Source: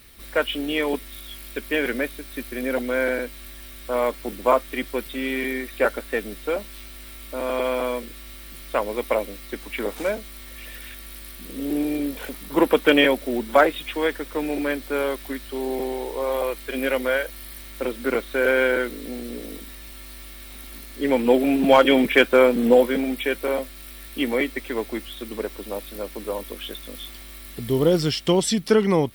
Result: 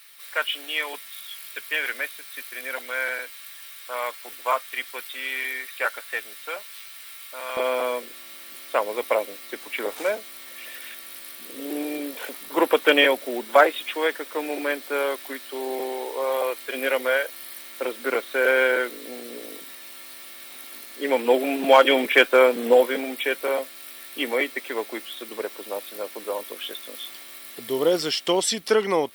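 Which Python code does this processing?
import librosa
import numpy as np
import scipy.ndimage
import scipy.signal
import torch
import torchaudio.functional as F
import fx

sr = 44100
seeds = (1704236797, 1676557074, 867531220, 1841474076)

y = fx.highpass(x, sr, hz=fx.steps((0.0, 1100.0), (7.57, 450.0)), slope=12)
y = F.gain(torch.from_numpy(y), 1.5).numpy()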